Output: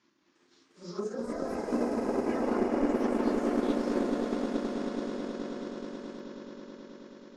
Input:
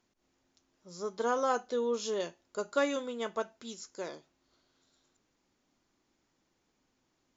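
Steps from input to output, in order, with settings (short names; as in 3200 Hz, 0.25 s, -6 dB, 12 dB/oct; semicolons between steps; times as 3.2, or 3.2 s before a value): phase scrambler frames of 0.2 s; speaker cabinet 180–5700 Hz, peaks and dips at 320 Hz +7 dB, 460 Hz -9 dB, 700 Hz -10 dB, 1100 Hz +3 dB, 1700 Hz +3 dB; in parallel at -7 dB: sine folder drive 10 dB, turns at -18.5 dBFS; on the sum: treble ducked by the level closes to 340 Hz, closed at -27.5 dBFS; on a send: swelling echo 0.107 s, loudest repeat 8, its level -6 dB; on the sum: echoes that change speed 0.353 s, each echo +4 st, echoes 3; transient shaper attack +6 dB, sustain -4 dB; gain -3.5 dB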